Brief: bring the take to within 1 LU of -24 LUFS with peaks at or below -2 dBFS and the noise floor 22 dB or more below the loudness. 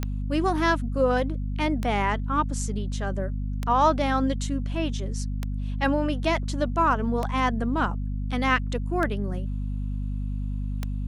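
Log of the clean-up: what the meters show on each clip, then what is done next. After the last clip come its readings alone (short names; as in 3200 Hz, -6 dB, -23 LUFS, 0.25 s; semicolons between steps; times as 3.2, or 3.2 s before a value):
clicks 7; hum 50 Hz; harmonics up to 250 Hz; hum level -26 dBFS; loudness -26.5 LUFS; peak -9.0 dBFS; loudness target -24.0 LUFS
-> de-click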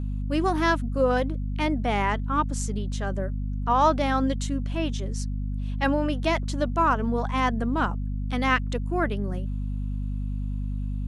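clicks 0; hum 50 Hz; harmonics up to 250 Hz; hum level -26 dBFS
-> de-hum 50 Hz, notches 5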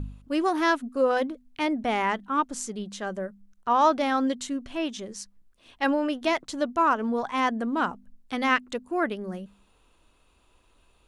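hum none; loudness -27.0 LUFS; peak -9.5 dBFS; loudness target -24.0 LUFS
-> gain +3 dB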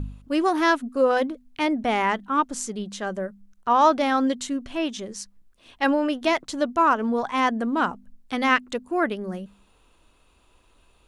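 loudness -24.0 LUFS; peak -7.0 dBFS; noise floor -60 dBFS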